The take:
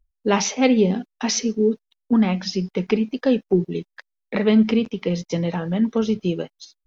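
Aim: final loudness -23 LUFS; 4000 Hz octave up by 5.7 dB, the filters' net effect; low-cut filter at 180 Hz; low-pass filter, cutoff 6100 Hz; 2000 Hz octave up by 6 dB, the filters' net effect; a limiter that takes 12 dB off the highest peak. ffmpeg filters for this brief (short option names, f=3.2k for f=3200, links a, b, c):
-af "highpass=180,lowpass=6.1k,equalizer=f=2k:t=o:g=5,equalizer=f=4k:t=o:g=7.5,volume=3dB,alimiter=limit=-12.5dB:level=0:latency=1"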